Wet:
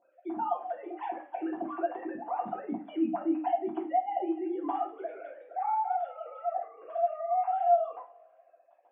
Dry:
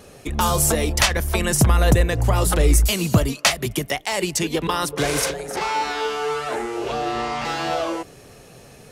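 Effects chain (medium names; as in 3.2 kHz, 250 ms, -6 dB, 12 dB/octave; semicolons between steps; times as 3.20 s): formants replaced by sine waves; tilt EQ -1.5 dB/octave; peak limiter -12 dBFS, peak gain reduction 10.5 dB; two resonant band-passes 480 Hz, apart 1.3 oct; two-slope reverb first 0.31 s, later 1.9 s, from -26 dB, DRR -4.5 dB; trim -9 dB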